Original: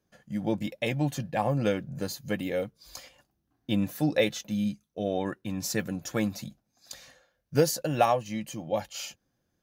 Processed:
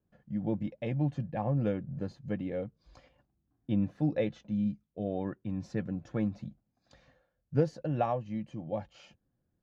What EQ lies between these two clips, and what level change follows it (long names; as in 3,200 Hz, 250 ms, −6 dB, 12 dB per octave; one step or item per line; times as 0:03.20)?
low-pass filter 1,400 Hz 6 dB per octave
high-frequency loss of the air 100 metres
low-shelf EQ 270 Hz +8.5 dB
−7.0 dB